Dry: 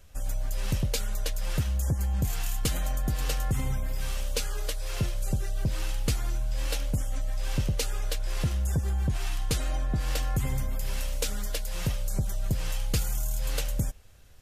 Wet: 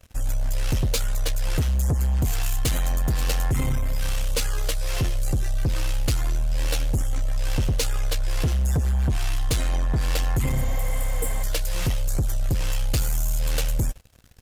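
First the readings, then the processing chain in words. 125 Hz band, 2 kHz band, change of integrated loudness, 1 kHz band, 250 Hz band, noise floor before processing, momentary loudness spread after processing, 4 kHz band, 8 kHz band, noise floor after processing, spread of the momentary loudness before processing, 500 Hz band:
+5.0 dB, +5.0 dB, +5.5 dB, +5.0 dB, +4.0 dB, -31 dBFS, 4 LU, +4.5 dB, +4.5 dB, -24 dBFS, 5 LU, +5.0 dB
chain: notch comb 200 Hz; sample leveller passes 3; spectral repair 10.58–11.41, 500–7300 Hz before; gain -1.5 dB

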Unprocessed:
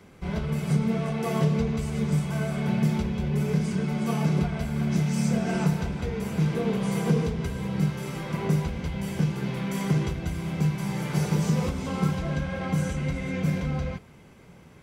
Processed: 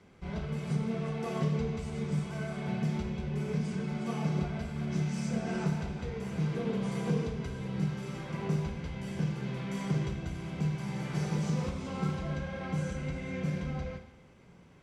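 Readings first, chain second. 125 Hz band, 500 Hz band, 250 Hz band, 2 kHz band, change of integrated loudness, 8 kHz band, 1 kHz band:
-7.0 dB, -6.0 dB, -7.0 dB, -6.5 dB, -7.0 dB, -9.0 dB, -6.5 dB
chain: LPF 7600 Hz 12 dB/oct; Schroeder reverb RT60 0.85 s, combs from 31 ms, DRR 6.5 dB; gain -7.5 dB

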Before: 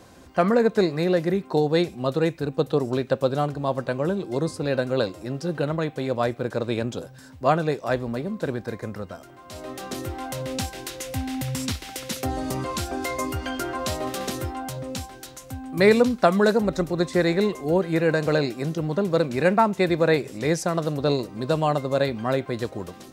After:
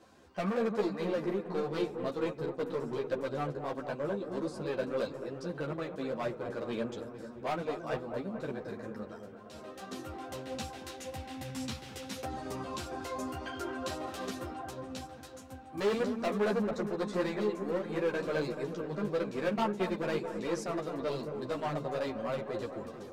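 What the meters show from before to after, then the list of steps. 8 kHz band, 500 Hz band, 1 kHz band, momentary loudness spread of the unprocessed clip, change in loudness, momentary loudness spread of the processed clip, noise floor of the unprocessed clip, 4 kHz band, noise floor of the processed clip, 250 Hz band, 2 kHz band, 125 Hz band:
-13.0 dB, -10.5 dB, -11.0 dB, 13 LU, -11.0 dB, 11 LU, -46 dBFS, -11.5 dB, -49 dBFS, -11.0 dB, -11.5 dB, -14.5 dB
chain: high shelf 8300 Hz -10 dB; notch 2100 Hz, Q 25; hard clip -18.5 dBFS, distortion -10 dB; low shelf 110 Hz -10.5 dB; dark delay 0.222 s, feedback 66%, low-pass 1500 Hz, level -8 dB; ensemble effect; gain -6 dB

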